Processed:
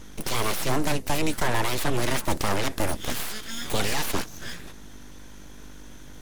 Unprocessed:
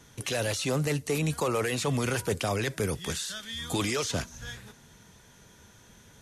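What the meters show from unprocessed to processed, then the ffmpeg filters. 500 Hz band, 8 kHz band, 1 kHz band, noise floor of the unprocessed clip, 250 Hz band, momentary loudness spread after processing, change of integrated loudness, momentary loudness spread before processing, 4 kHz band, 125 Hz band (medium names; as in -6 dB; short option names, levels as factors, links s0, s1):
0.0 dB, +2.0 dB, +6.5 dB, -56 dBFS, +1.5 dB, 21 LU, +2.0 dB, 7 LU, +3.0 dB, -0.5 dB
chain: -af "aeval=exprs='val(0)+0.00447*(sin(2*PI*50*n/s)+sin(2*PI*2*50*n/s)/2+sin(2*PI*3*50*n/s)/3+sin(2*PI*4*50*n/s)/4+sin(2*PI*5*50*n/s)/5)':c=same,aeval=exprs='abs(val(0))':c=same,equalizer=f=7900:w=1.5:g=-2,volume=2.11"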